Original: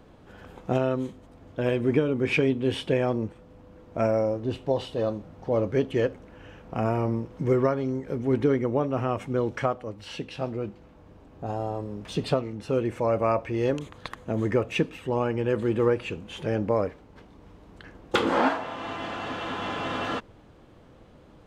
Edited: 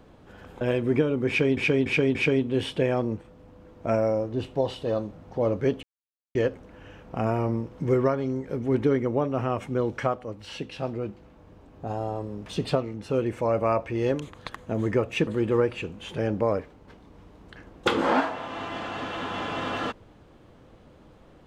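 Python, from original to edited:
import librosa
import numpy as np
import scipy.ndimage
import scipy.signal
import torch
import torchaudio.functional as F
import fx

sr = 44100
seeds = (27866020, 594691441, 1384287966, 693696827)

y = fx.edit(x, sr, fx.cut(start_s=0.61, length_s=0.98),
    fx.repeat(start_s=2.26, length_s=0.29, count=4),
    fx.insert_silence(at_s=5.94, length_s=0.52),
    fx.cut(start_s=14.86, length_s=0.69), tone=tone)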